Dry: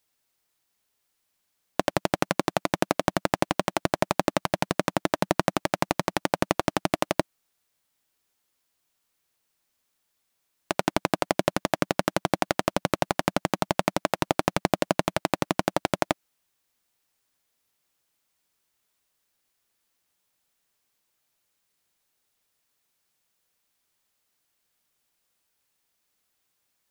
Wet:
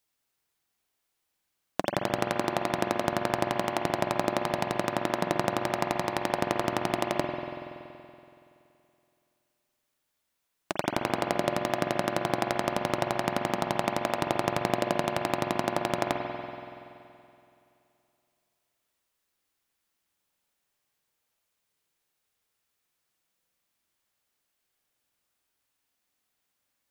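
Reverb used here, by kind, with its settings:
spring reverb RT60 2.7 s, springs 47 ms, chirp 65 ms, DRR 1.5 dB
level −4.5 dB

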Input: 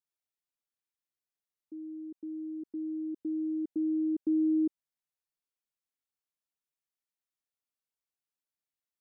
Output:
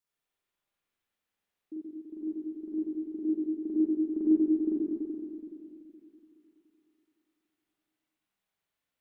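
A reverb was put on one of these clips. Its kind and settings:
spring reverb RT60 3 s, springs 42/47 ms, chirp 45 ms, DRR −8.5 dB
level +2.5 dB

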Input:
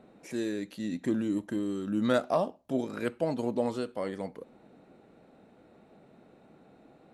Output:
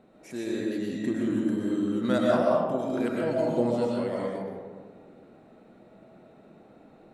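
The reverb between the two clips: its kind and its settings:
comb and all-pass reverb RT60 1.6 s, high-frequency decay 0.4×, pre-delay 80 ms, DRR −4 dB
level −2 dB

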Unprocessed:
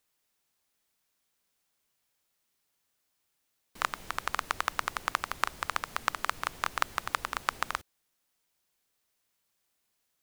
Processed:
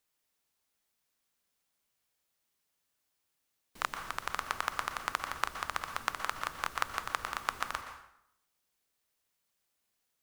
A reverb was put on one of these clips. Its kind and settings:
dense smooth reverb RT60 0.76 s, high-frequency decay 0.75×, pre-delay 110 ms, DRR 7.5 dB
level −3.5 dB

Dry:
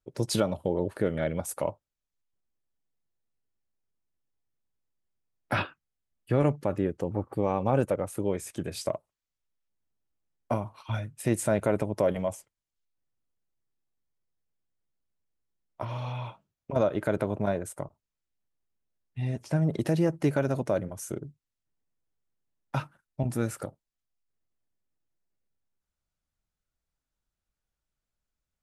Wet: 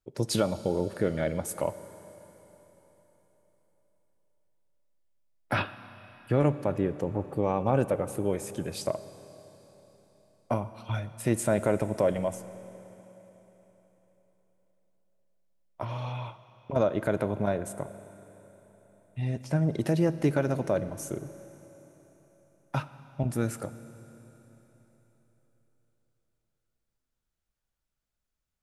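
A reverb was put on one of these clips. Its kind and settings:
four-comb reverb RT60 4 s, combs from 27 ms, DRR 13.5 dB

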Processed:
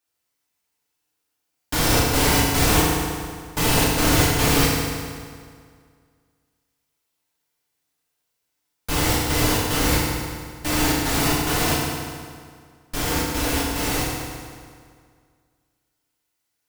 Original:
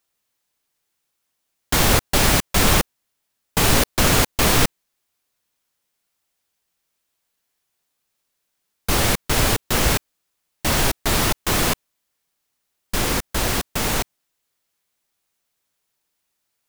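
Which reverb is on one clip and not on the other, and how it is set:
feedback delay network reverb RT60 2 s, low-frequency decay 1×, high-frequency decay 0.8×, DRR −6 dB
level −8 dB

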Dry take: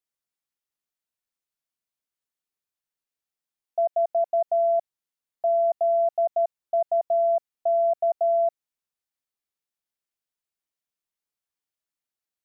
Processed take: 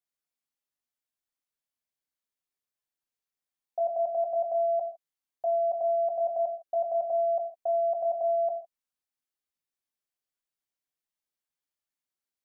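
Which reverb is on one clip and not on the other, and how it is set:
reverb whose tail is shaped and stops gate 180 ms falling, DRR 3 dB
level −4.5 dB

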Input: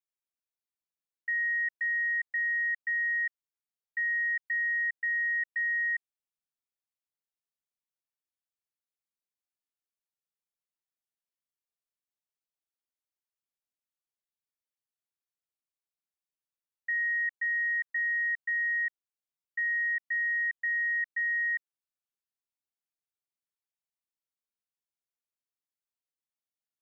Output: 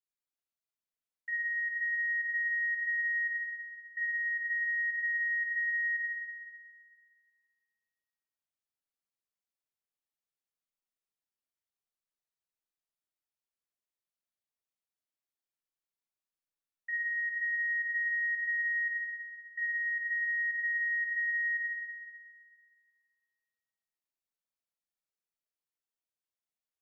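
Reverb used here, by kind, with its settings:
comb and all-pass reverb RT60 2.2 s, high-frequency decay 0.65×, pre-delay 20 ms, DRR −2 dB
level −6.5 dB

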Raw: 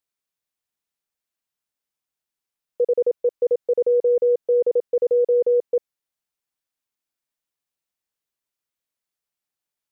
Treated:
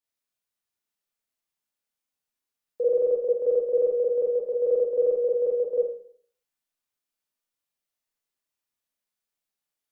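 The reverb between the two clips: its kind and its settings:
four-comb reverb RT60 0.56 s, combs from 26 ms, DRR −5 dB
level −7 dB

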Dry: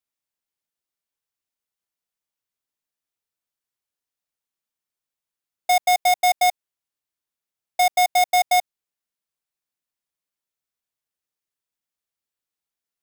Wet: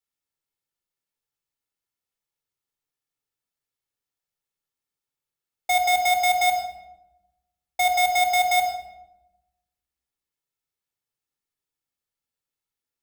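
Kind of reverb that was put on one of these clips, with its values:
rectangular room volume 3,600 cubic metres, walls furnished, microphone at 4.2 metres
level −4 dB

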